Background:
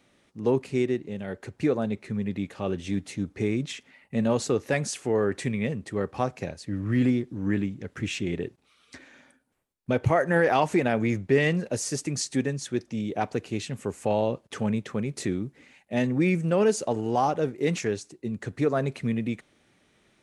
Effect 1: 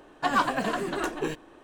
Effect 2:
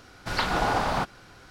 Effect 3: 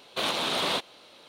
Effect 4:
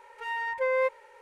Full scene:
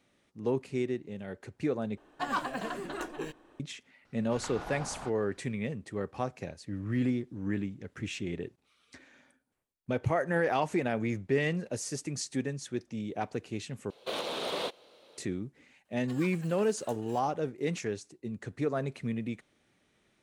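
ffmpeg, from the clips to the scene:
-filter_complex "[1:a]asplit=2[a][b];[0:a]volume=-6.5dB[c];[2:a]highshelf=f=7.8k:g=-11[d];[3:a]equalizer=f=480:w=1.5:g=10[e];[b]aderivative[f];[c]asplit=3[g][h][i];[g]atrim=end=1.974[j];[a]atrim=end=1.63,asetpts=PTS-STARTPTS,volume=-8dB[k];[h]atrim=start=3.596:end=13.904[l];[e]atrim=end=1.28,asetpts=PTS-STARTPTS,volume=-9.5dB[m];[i]atrim=start=15.176[n];[d]atrim=end=1.5,asetpts=PTS-STARTPTS,volume=-16.5dB,afade=t=in:d=0.004:c=hsin,afade=t=out:st=1.496:d=0.004:c=hsin,adelay=178605S[o];[f]atrim=end=1.63,asetpts=PTS-STARTPTS,volume=-10.5dB,afade=t=in:d=0.004:c=hsin,afade=t=out:st=1.626:d=0.004:c=hsin,adelay=15850[p];[j][k]acrossfade=d=0.004:c1=hsin:c2=hsin[q];[q][l]acrossfade=d=0.004:c1=hsin:c2=hsin[r];[r][m]acrossfade=d=0.004:c1=hsin:c2=hsin[s];[s][n]acrossfade=d=0.004:c1=hsin:c2=hsin[t];[t][o][p]amix=inputs=3:normalize=0"

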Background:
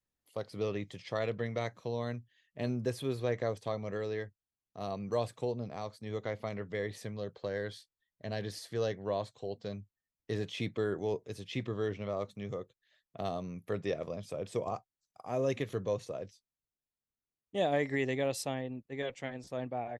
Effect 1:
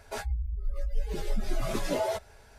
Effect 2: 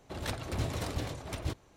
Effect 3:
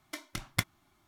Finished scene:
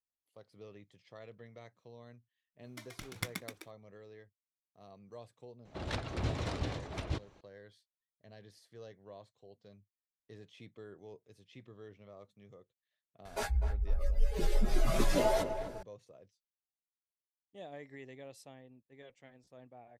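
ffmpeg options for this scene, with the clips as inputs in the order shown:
-filter_complex "[0:a]volume=-17.5dB[a];[3:a]asplit=8[b][c][d][e][f][g][h][i];[c]adelay=128,afreqshift=71,volume=-4.5dB[j];[d]adelay=256,afreqshift=142,volume=-9.7dB[k];[e]adelay=384,afreqshift=213,volume=-14.9dB[l];[f]adelay=512,afreqshift=284,volume=-20.1dB[m];[g]adelay=640,afreqshift=355,volume=-25.3dB[n];[h]adelay=768,afreqshift=426,volume=-30.5dB[o];[i]adelay=896,afreqshift=497,volume=-35.7dB[p];[b][j][k][l][m][n][o][p]amix=inputs=8:normalize=0[q];[2:a]lowpass=5.3k[r];[1:a]asplit=2[s][t];[t]adelay=251,lowpass=f=1.4k:p=1,volume=-8.5dB,asplit=2[u][v];[v]adelay=251,lowpass=f=1.4k:p=1,volume=0.39,asplit=2[w][x];[x]adelay=251,lowpass=f=1.4k:p=1,volume=0.39,asplit=2[y][z];[z]adelay=251,lowpass=f=1.4k:p=1,volume=0.39[aa];[s][u][w][y][aa]amix=inputs=5:normalize=0[ab];[q]atrim=end=1.07,asetpts=PTS-STARTPTS,volume=-8.5dB,afade=t=in:d=0.004:c=hsin,afade=t=out:st=1.066:d=0.004:c=hsin,adelay=2640[ac];[r]atrim=end=1.76,asetpts=PTS-STARTPTS,volume=-1dB,afade=t=in:d=0.004:c=hsin,afade=t=out:st=1.756:d=0.004:c=hsin,adelay=249165S[ad];[ab]atrim=end=2.58,asetpts=PTS-STARTPTS,afade=t=in:d=0.004:c=hsin,afade=t=out:st=2.576:d=0.004:c=hsin,adelay=13250[ae];[a][ac][ad][ae]amix=inputs=4:normalize=0"

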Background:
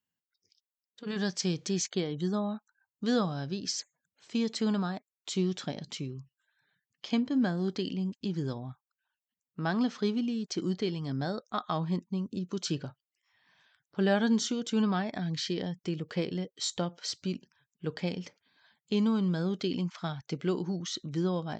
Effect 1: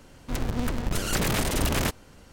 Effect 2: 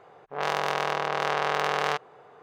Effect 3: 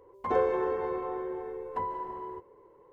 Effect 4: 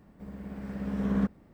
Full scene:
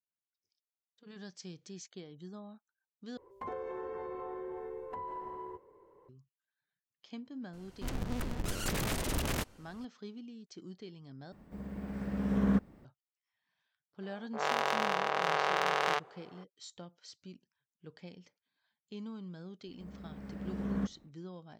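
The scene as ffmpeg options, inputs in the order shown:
-filter_complex "[4:a]asplit=2[a][b];[0:a]volume=-16.5dB[c];[3:a]acompressor=threshold=-33dB:ratio=6:attack=3.2:release=140:knee=1:detection=peak[d];[2:a]equalizer=f=61:w=0.37:g=-11[e];[c]asplit=3[f][g][h];[f]atrim=end=3.174[i];[d]atrim=end=2.92,asetpts=PTS-STARTPTS,volume=-4dB[j];[g]atrim=start=6.086:end=11.324[k];[a]atrim=end=1.53,asetpts=PTS-STARTPTS,volume=-0.5dB[l];[h]atrim=start=12.846[m];[1:a]atrim=end=2.32,asetpts=PTS-STARTPTS,volume=-8.5dB,afade=t=in:d=0.004:c=hsin,afade=t=out:st=2.316:d=0.004:c=hsin,adelay=7530[n];[e]atrim=end=2.42,asetpts=PTS-STARTPTS,volume=-3.5dB,afade=t=in:d=0.004:c=hsin,afade=t=out:st=2.416:d=0.004:c=hsin,adelay=14020[o];[b]atrim=end=1.53,asetpts=PTS-STARTPTS,volume=-7dB,afade=t=in:d=0.1,afade=t=out:st=1.43:d=0.1,adelay=19600[p];[i][j]acrossfade=d=0.004:c1=hsin:c2=hsin[q];[q][k]acrossfade=d=0.004:c1=hsin:c2=hsin[r];[r][l]acrossfade=d=0.004:c1=hsin:c2=hsin[s];[s][m]acrossfade=d=0.004:c1=hsin:c2=hsin[t];[t][n][o][p]amix=inputs=4:normalize=0"

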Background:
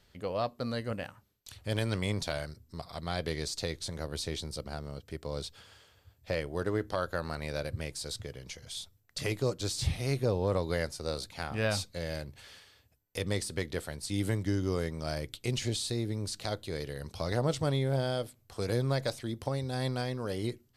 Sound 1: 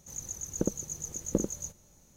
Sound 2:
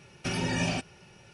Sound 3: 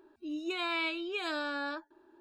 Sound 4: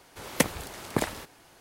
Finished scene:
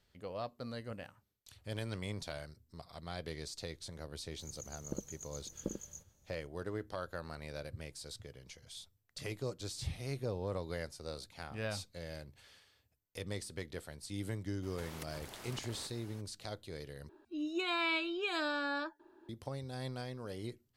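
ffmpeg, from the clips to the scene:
-filter_complex "[0:a]volume=-9dB[a];[4:a]acompressor=threshold=-43dB:ratio=6:attack=3.2:release=140:knee=1:detection=peak[b];[a]asplit=2[c][d];[c]atrim=end=17.094[e];[3:a]atrim=end=2.2,asetpts=PTS-STARTPTS,volume=-0.5dB[f];[d]atrim=start=19.286[g];[1:a]atrim=end=2.16,asetpts=PTS-STARTPTS,volume=-11.5dB,afade=t=in:d=0.004:c=hsin,afade=t=out:st=2.156:d=0.004:c=hsin,adelay=4310[h];[b]atrim=end=1.6,asetpts=PTS-STARTPTS,volume=-3dB,afade=t=in:d=0.02,afade=t=out:st=1.58:d=0.02,adelay=14620[i];[e][f]acrossfade=d=0.004:c1=hsin:c2=hsin[j];[j][g]acrossfade=d=0.004:c1=hsin:c2=hsin[k];[k][h][i]amix=inputs=3:normalize=0"

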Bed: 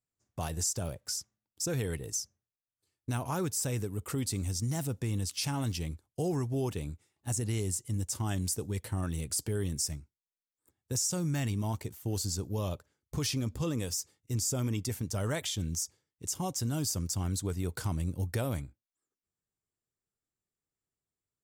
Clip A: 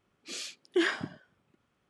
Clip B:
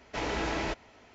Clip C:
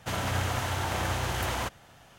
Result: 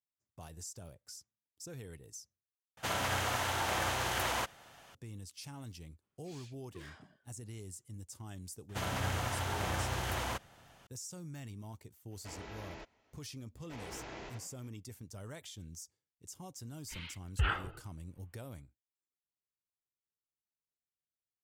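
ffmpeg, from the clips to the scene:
-filter_complex "[3:a]asplit=2[a][b];[1:a]asplit=2[c][d];[2:a]asplit=2[e][f];[0:a]volume=-14.5dB[g];[a]lowshelf=f=270:g=-10[h];[c]asoftclip=type=tanh:threshold=-34.5dB[i];[f]asplit=6[j][k][l][m][n][o];[k]adelay=85,afreqshift=66,volume=-3dB[p];[l]adelay=170,afreqshift=132,volume=-11.6dB[q];[m]adelay=255,afreqshift=198,volume=-20.3dB[r];[n]adelay=340,afreqshift=264,volume=-28.9dB[s];[o]adelay=425,afreqshift=330,volume=-37.5dB[t];[j][p][q][r][s][t]amix=inputs=6:normalize=0[u];[d]highpass=f=150:t=q:w=0.5412,highpass=f=150:t=q:w=1.307,lowpass=f=3.6k:t=q:w=0.5176,lowpass=f=3.6k:t=q:w=0.7071,lowpass=f=3.6k:t=q:w=1.932,afreqshift=-280[v];[g]asplit=2[w][x];[w]atrim=end=2.774[y];[h]atrim=end=2.18,asetpts=PTS-STARTPTS,volume=-1dB[z];[x]atrim=start=4.946[aa];[i]atrim=end=1.89,asetpts=PTS-STARTPTS,volume=-15.5dB,afade=t=in:d=0.05,afade=t=out:st=1.84:d=0.05,adelay=5990[ab];[b]atrim=end=2.18,asetpts=PTS-STARTPTS,volume=-5.5dB,afade=t=in:d=0.004:c=hsin,afade=t=out:st=2.176:d=0.004:c=hsin,adelay=8690[ac];[e]atrim=end=1.14,asetpts=PTS-STARTPTS,volume=-16.5dB,afade=t=in:d=0.004:c=hsin,afade=t=out:st=1.136:d=0.004:c=hsin,adelay=12110[ad];[u]atrim=end=1.14,asetpts=PTS-STARTPTS,volume=-16.5dB,afade=t=in:d=0.004:c=hsin,afade=t=out:st=1.136:d=0.004:c=hsin,adelay=13560[ae];[v]atrim=end=1.89,asetpts=PTS-STARTPTS,volume=-3.5dB,afade=t=in:d=0.004:c=hsin,afade=t=out:st=1.886:d=0.004:c=hsin,adelay=16630[af];[y][z]acrossfade=d=0.004:c1=hsin:c2=hsin[ag];[ag][aa]acrossfade=d=0.004:c1=hsin:c2=hsin[ah];[ah][ab][ac][ad][ae][af]amix=inputs=6:normalize=0"

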